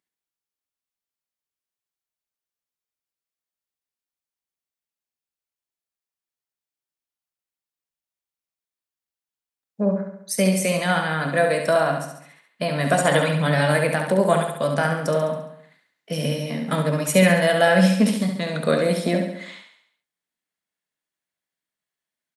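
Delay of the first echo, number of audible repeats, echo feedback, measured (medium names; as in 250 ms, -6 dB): 69 ms, 6, 52%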